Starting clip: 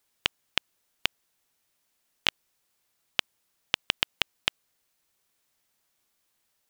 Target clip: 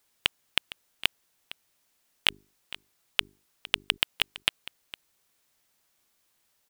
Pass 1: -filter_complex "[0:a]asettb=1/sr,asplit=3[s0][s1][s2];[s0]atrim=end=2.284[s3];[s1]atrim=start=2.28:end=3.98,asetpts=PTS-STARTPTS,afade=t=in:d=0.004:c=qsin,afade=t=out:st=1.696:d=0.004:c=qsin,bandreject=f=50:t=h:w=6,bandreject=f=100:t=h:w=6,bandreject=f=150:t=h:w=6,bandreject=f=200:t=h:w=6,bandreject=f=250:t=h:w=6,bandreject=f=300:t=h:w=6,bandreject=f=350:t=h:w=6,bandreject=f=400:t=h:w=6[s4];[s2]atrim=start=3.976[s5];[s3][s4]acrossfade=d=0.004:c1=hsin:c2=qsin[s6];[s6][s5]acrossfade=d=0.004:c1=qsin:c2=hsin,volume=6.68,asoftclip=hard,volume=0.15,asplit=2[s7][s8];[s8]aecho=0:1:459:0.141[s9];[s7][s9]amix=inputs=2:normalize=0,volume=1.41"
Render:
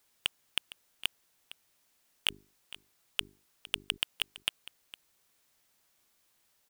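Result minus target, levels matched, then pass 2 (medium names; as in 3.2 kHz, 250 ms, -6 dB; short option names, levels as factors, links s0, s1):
overload inside the chain: distortion +8 dB
-filter_complex "[0:a]asettb=1/sr,asplit=3[s0][s1][s2];[s0]atrim=end=2.284[s3];[s1]atrim=start=2.28:end=3.98,asetpts=PTS-STARTPTS,afade=t=in:d=0.004:c=qsin,afade=t=out:st=1.696:d=0.004:c=qsin,bandreject=f=50:t=h:w=6,bandreject=f=100:t=h:w=6,bandreject=f=150:t=h:w=6,bandreject=f=200:t=h:w=6,bandreject=f=250:t=h:w=6,bandreject=f=300:t=h:w=6,bandreject=f=350:t=h:w=6,bandreject=f=400:t=h:w=6[s4];[s2]atrim=start=3.976[s5];[s3][s4]acrossfade=d=0.004:c1=hsin:c2=qsin[s6];[s6][s5]acrossfade=d=0.004:c1=qsin:c2=hsin,volume=2.11,asoftclip=hard,volume=0.473,asplit=2[s7][s8];[s8]aecho=0:1:459:0.141[s9];[s7][s9]amix=inputs=2:normalize=0,volume=1.41"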